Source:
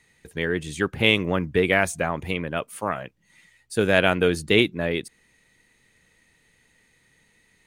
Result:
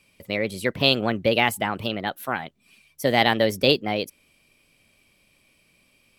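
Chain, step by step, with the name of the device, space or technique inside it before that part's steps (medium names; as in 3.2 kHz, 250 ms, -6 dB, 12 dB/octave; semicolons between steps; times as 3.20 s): nightcore (tape speed +24%)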